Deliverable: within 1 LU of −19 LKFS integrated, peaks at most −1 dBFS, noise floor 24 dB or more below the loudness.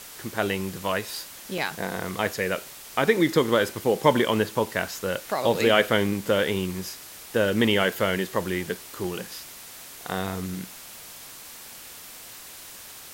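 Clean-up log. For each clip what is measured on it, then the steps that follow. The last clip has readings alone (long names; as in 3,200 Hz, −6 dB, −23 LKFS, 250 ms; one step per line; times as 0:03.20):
number of dropouts 4; longest dropout 2.3 ms; background noise floor −43 dBFS; target noise floor −50 dBFS; integrated loudness −25.5 LKFS; sample peak −4.5 dBFS; target loudness −19.0 LKFS
→ repair the gap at 0:01.58/0:02.27/0:09.04/0:10.27, 2.3 ms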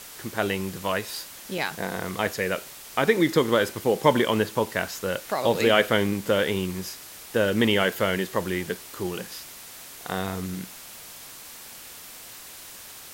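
number of dropouts 0; background noise floor −43 dBFS; target noise floor −50 dBFS
→ broadband denoise 7 dB, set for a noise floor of −43 dBFS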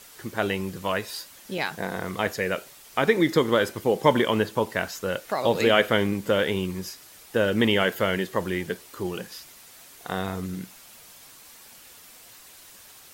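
background noise floor −49 dBFS; target noise floor −50 dBFS
→ broadband denoise 6 dB, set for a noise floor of −49 dBFS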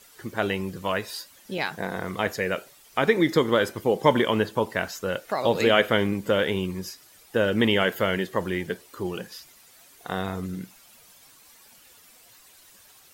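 background noise floor −54 dBFS; integrated loudness −25.5 LKFS; sample peak −4.5 dBFS; target loudness −19.0 LKFS
→ level +6.5 dB
brickwall limiter −1 dBFS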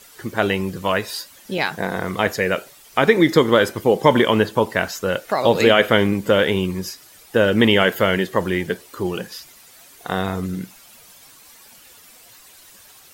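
integrated loudness −19.0 LKFS; sample peak −1.0 dBFS; background noise floor −47 dBFS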